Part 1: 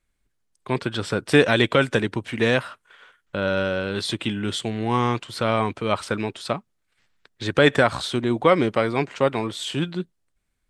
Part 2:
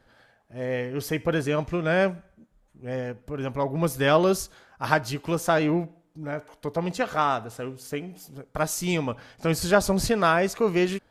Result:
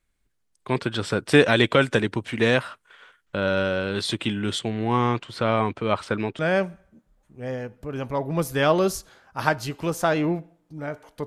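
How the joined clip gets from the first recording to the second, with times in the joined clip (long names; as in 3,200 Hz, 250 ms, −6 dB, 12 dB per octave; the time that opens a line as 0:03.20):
part 1
0:04.59–0:06.39: high-shelf EQ 5,300 Hz −11 dB
0:06.39: continue with part 2 from 0:01.84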